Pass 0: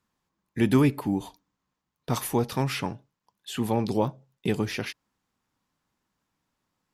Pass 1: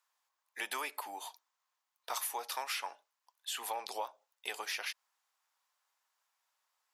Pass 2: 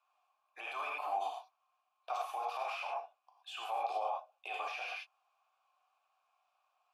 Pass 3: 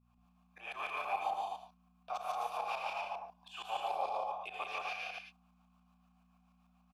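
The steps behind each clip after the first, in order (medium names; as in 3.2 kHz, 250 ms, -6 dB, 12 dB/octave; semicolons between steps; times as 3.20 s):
high-pass 690 Hz 24 dB/octave; treble shelf 5.7 kHz +5 dB; compression 4:1, threshold -33 dBFS, peak gain reduction 7 dB; trim -1.5 dB
gated-style reverb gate 150 ms flat, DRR 0 dB; peak limiter -32.5 dBFS, peak gain reduction 10.5 dB; vowel filter a; trim +14 dB
tremolo saw up 6.9 Hz, depth 90%; mains buzz 60 Hz, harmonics 4, -73 dBFS -3 dB/octave; on a send: loudspeakers at several distances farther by 50 m -3 dB, 61 m -3 dB, 88 m -4 dB; on the sum: trim +1.5 dB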